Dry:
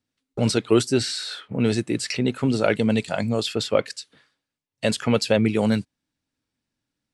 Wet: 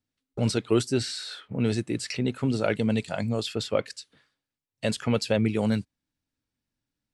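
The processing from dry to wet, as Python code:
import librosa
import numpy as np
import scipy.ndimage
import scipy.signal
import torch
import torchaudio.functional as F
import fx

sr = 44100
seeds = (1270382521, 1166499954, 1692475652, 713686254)

y = fx.low_shelf(x, sr, hz=88.0, db=9.0)
y = y * 10.0 ** (-5.5 / 20.0)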